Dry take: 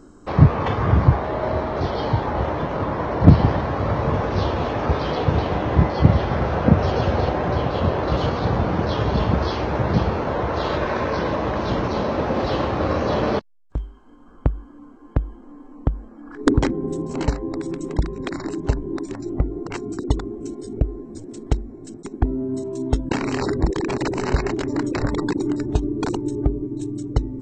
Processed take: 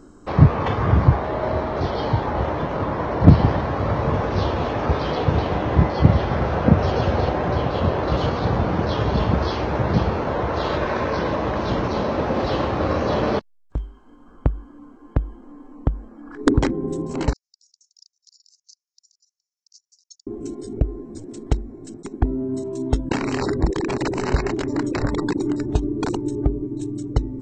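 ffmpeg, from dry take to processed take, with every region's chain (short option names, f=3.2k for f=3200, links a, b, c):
-filter_complex "[0:a]asettb=1/sr,asplit=3[a][b][c];[a]atrim=end=17.334[d];[b]atrim=start=17.33:end=20.27,asetpts=PTS-STARTPTS,afade=t=in:d=0.004:c=qsin,afade=t=out:st=2.936:d=0.004:c=qsin,agate=range=-33dB:threshold=-25dB:ratio=3:release=100:detection=peak,asuperpass=centerf=5600:order=8:qfactor=2.5[e];[c]atrim=start=20.266[f];[d][e]acrossfade=d=0.004:c1=hsin:c2=qsin[g];[g][f]acrossfade=d=0.004:c1=qsin:c2=hsin"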